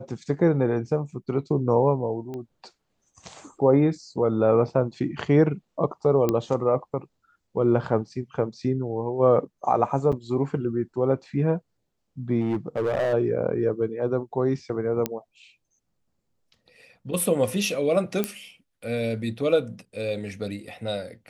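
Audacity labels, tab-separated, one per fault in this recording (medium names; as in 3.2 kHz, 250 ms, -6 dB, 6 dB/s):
2.340000	2.340000	pop -24 dBFS
6.290000	6.290000	pop -10 dBFS
10.120000	10.130000	dropout 6.5 ms
12.410000	13.140000	clipped -20 dBFS
15.060000	15.060000	pop -10 dBFS
18.240000	18.240000	pop -10 dBFS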